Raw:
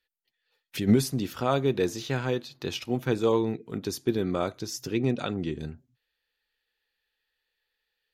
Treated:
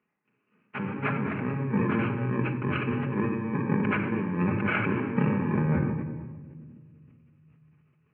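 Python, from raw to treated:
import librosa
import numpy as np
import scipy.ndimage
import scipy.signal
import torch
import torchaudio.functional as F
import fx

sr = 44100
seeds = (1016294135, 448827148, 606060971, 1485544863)

y = fx.bit_reversed(x, sr, seeds[0], block=64)
y = scipy.signal.sosfilt(scipy.signal.butter(8, 2300.0, 'lowpass', fs=sr, output='sos'), y)
y = fx.over_compress(y, sr, threshold_db=-40.0, ratio=-1.0)
y = scipy.signal.sosfilt(scipy.signal.butter(4, 130.0, 'highpass', fs=sr, output='sos'), y)
y = fx.low_shelf(y, sr, hz=170.0, db=9.0)
y = fx.room_shoebox(y, sr, seeds[1], volume_m3=3200.0, walls='mixed', distance_m=1.4)
y = fx.sustainer(y, sr, db_per_s=30.0)
y = y * 10.0 ** (6.0 / 20.0)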